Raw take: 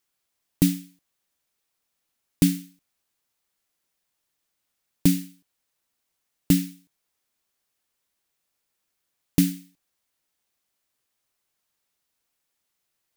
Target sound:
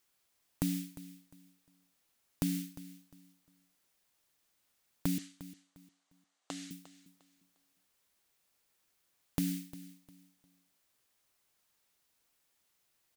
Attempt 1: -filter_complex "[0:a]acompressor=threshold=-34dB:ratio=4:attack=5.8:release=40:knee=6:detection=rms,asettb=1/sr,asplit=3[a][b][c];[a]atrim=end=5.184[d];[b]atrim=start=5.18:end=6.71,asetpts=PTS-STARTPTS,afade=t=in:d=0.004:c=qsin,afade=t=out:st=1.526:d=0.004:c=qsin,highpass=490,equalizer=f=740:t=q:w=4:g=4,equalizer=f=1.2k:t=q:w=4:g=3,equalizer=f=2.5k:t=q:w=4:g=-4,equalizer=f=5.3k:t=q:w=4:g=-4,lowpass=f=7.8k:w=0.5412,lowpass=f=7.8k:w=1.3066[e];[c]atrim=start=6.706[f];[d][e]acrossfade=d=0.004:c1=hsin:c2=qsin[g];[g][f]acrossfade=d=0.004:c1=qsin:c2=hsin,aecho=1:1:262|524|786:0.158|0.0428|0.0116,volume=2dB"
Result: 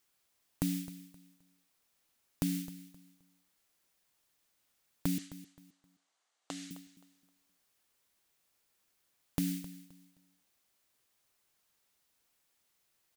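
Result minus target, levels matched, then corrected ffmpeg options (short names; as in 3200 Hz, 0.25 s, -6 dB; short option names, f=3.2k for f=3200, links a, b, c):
echo 91 ms early
-filter_complex "[0:a]acompressor=threshold=-34dB:ratio=4:attack=5.8:release=40:knee=6:detection=rms,asettb=1/sr,asplit=3[a][b][c];[a]atrim=end=5.184[d];[b]atrim=start=5.18:end=6.71,asetpts=PTS-STARTPTS,afade=t=in:d=0.004:c=qsin,afade=t=out:st=1.526:d=0.004:c=qsin,highpass=490,equalizer=f=740:t=q:w=4:g=4,equalizer=f=1.2k:t=q:w=4:g=3,equalizer=f=2.5k:t=q:w=4:g=-4,equalizer=f=5.3k:t=q:w=4:g=-4,lowpass=f=7.8k:w=0.5412,lowpass=f=7.8k:w=1.3066[e];[c]atrim=start=6.706[f];[d][e]acrossfade=d=0.004:c1=hsin:c2=qsin[g];[g][f]acrossfade=d=0.004:c1=qsin:c2=hsin,aecho=1:1:353|706|1059:0.158|0.0428|0.0116,volume=2dB"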